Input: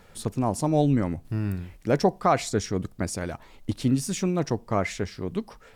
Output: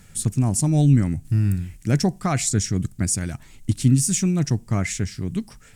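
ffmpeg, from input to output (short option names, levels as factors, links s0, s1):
-af "equalizer=f=125:t=o:w=1:g=6,equalizer=f=500:t=o:w=1:g=-12,equalizer=f=1000:t=o:w=1:g=-10,equalizer=f=4000:t=o:w=1:g=-5,equalizer=f=8000:t=o:w=1:g=10,volume=1.78"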